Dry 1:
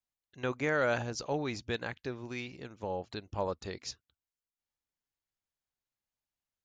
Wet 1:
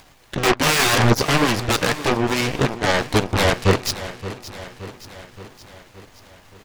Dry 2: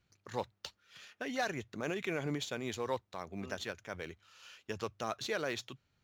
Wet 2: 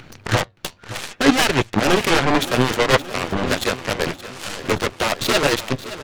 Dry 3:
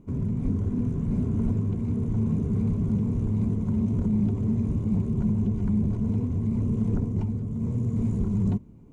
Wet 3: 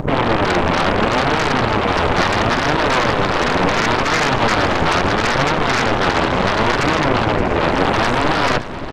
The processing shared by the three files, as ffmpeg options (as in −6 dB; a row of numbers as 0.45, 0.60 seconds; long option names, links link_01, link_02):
-filter_complex "[0:a]lowpass=frequency=2000:poles=1,bandreject=frequency=1300:width=27,asplit=2[link_01][link_02];[link_02]acompressor=mode=upward:threshold=-29dB:ratio=2.5,volume=1dB[link_03];[link_01][link_03]amix=inputs=2:normalize=0,aeval=exprs='0.376*sin(PI/2*10*val(0)/0.376)':channel_layout=same,flanger=delay=6.1:depth=6.3:regen=68:speed=0.72:shape=triangular,aeval=exprs='0.376*(cos(1*acos(clip(val(0)/0.376,-1,1)))-cos(1*PI/2))+0.133*(cos(3*acos(clip(val(0)/0.376,-1,1)))-cos(3*PI/2))+0.00335*(cos(7*acos(clip(val(0)/0.376,-1,1)))-cos(7*PI/2))+0.00668*(cos(8*acos(clip(val(0)/0.376,-1,1)))-cos(8*PI/2))':channel_layout=same,aecho=1:1:572|1144|1716|2288|2860|3432:0.188|0.111|0.0656|0.0387|0.0228|0.0135,volume=6dB"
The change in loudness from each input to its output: +17.0, +20.0, +10.5 LU